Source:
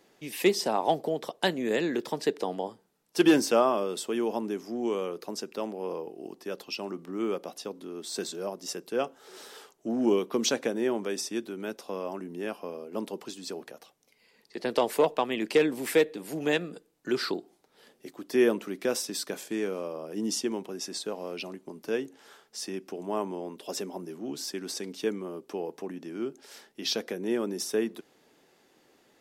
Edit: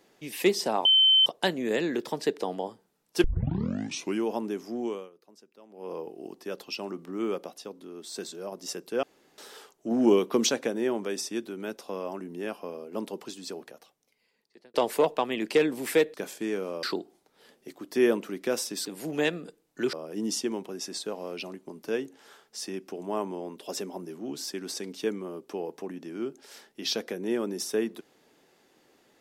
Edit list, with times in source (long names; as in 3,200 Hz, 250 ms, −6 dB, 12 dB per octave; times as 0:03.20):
0:00.85–0:01.26: beep over 3,080 Hz −16 dBFS
0:03.24: tape start 1.01 s
0:04.79–0:06.00: duck −20.5 dB, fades 0.31 s
0:07.47–0:08.52: clip gain −3.5 dB
0:09.03–0:09.38: fill with room tone
0:09.91–0:10.47: clip gain +3.5 dB
0:13.41–0:14.74: fade out
0:16.14–0:17.21: swap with 0:19.24–0:19.93